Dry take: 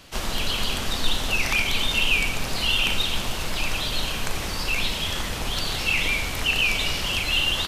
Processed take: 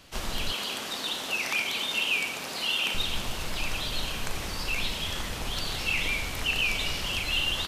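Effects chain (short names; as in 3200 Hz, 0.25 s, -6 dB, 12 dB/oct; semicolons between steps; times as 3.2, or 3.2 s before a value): 0.52–2.95 HPF 260 Hz 12 dB/oct; gain -5 dB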